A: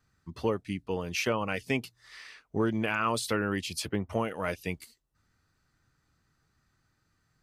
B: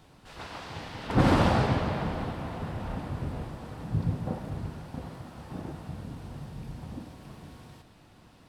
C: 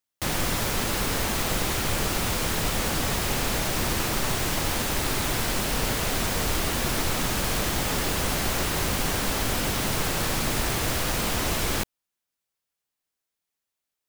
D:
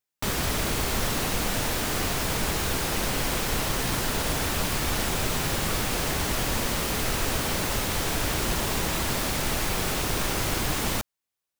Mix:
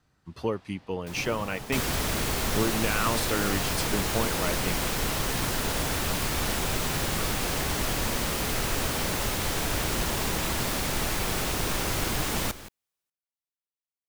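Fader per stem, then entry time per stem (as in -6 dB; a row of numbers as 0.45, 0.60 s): 0.0, -17.5, -17.5, -1.5 dB; 0.00, 0.00, 0.85, 1.50 s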